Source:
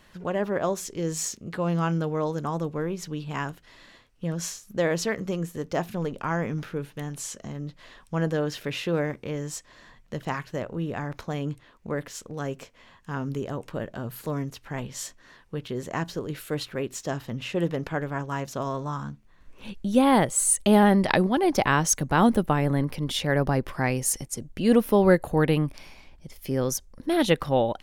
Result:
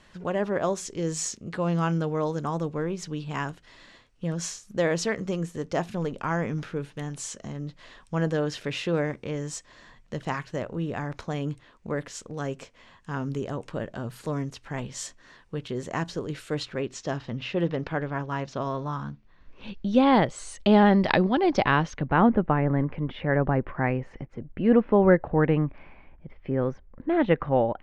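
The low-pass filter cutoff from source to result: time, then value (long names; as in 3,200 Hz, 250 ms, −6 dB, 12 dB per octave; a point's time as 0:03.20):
low-pass filter 24 dB per octave
0:16.30 9,100 Hz
0:17.40 5,100 Hz
0:21.56 5,100 Hz
0:22.29 2,200 Hz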